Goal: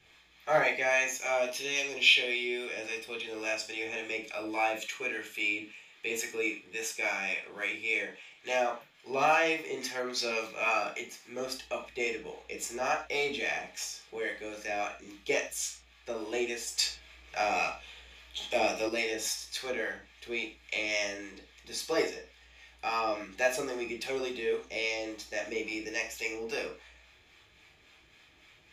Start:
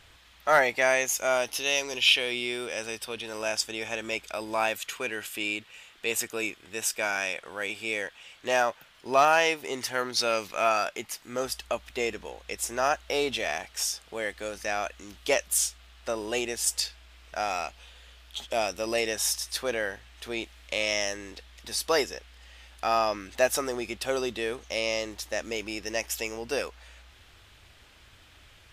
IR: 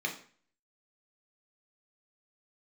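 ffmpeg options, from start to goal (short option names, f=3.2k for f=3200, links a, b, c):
-filter_complex "[0:a]acrossover=split=670[a][b];[a]aeval=exprs='val(0)*(1-0.5/2+0.5/2*cos(2*PI*3.6*n/s))':c=same[c];[b]aeval=exprs='val(0)*(1-0.5/2-0.5/2*cos(2*PI*3.6*n/s))':c=same[d];[c][d]amix=inputs=2:normalize=0[e];[1:a]atrim=start_sample=2205,atrim=end_sample=6174[f];[e][f]afir=irnorm=-1:irlink=0,asettb=1/sr,asplit=3[g][h][i];[g]atrim=end=16.784[j];[h]atrim=start=16.78:end=18.89,asetpts=PTS-STARTPTS,afade=t=in:d=0.004:c=qsin,afade=t=out:st=2.106:d=0.004:c=qsin,acontrast=31[k];[i]atrim=start=18.886[l];[j][k]acrossfade=d=0.004:c1=hsin:c2=qsin[m];[m][l]acrossfade=d=0.004:c1=qsin:c2=hsin,volume=-6dB"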